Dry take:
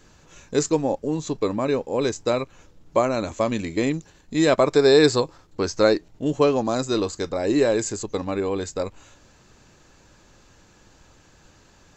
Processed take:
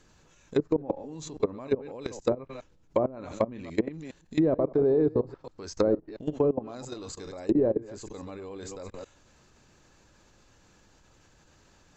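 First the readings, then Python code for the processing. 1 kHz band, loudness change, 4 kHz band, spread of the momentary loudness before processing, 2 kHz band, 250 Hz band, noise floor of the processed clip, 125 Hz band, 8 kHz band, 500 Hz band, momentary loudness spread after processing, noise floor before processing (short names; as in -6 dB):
-11.5 dB, -6.5 dB, -17.5 dB, 11 LU, -16.5 dB, -6.0 dB, -61 dBFS, -6.5 dB, -14.5 dB, -7.0 dB, 17 LU, -55 dBFS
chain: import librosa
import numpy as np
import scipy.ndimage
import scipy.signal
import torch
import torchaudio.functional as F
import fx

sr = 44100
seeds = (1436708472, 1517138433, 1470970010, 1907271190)

y = fx.reverse_delay(x, sr, ms=137, wet_db=-10.5)
y = fx.level_steps(y, sr, step_db=20)
y = fx.env_lowpass_down(y, sr, base_hz=520.0, full_db=-20.0)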